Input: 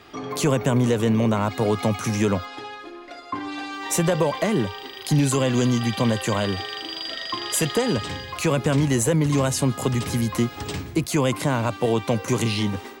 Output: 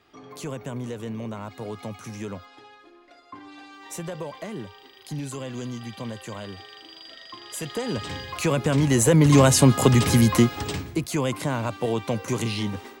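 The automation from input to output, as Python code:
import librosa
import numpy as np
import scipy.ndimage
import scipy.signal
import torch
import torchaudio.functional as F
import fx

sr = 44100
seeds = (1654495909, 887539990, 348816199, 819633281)

y = fx.gain(x, sr, db=fx.line((7.45, -13.0), (8.18, -1.5), (8.72, -1.5), (9.37, 6.0), (10.31, 6.0), (11.02, -4.0)))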